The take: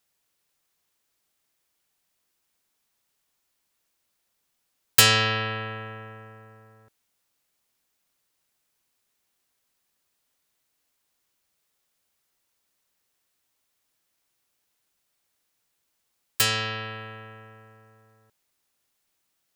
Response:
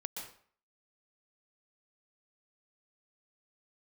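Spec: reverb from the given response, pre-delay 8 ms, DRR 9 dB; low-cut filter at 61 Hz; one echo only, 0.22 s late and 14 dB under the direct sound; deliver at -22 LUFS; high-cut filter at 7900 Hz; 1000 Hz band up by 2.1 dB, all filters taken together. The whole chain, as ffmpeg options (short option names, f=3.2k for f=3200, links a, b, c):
-filter_complex "[0:a]highpass=61,lowpass=7.9k,equalizer=f=1k:t=o:g=3,aecho=1:1:220:0.2,asplit=2[a][b];[1:a]atrim=start_sample=2205,adelay=8[c];[b][c]afir=irnorm=-1:irlink=0,volume=-8.5dB[d];[a][d]amix=inputs=2:normalize=0,volume=0.5dB"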